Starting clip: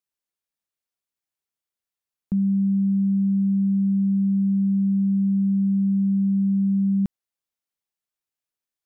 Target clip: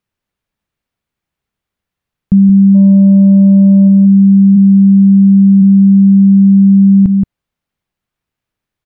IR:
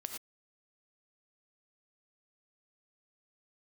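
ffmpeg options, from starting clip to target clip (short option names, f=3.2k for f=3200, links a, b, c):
-filter_complex "[0:a]asplit=3[a][b][c];[a]afade=t=out:st=4.55:d=0.02[d];[b]highpass=f=67:w=0.5412,highpass=f=67:w=1.3066,afade=t=in:st=4.55:d=0.02,afade=t=out:st=5.61:d=0.02[e];[c]afade=t=in:st=5.61:d=0.02[f];[d][e][f]amix=inputs=3:normalize=0,bass=f=250:g=11,treble=f=4k:g=-12,asplit=3[g][h][i];[g]afade=t=out:st=2.74:d=0.02[j];[h]acontrast=60,afade=t=in:st=2.74:d=0.02,afade=t=out:st=3.87:d=0.02[k];[i]afade=t=in:st=3.87:d=0.02[l];[j][k][l]amix=inputs=3:normalize=0,asplit=2[m][n];[n]adelay=174.9,volume=-10dB,highshelf=f=4k:g=-3.94[o];[m][o]amix=inputs=2:normalize=0,alimiter=level_in=14.5dB:limit=-1dB:release=50:level=0:latency=1,volume=-1dB"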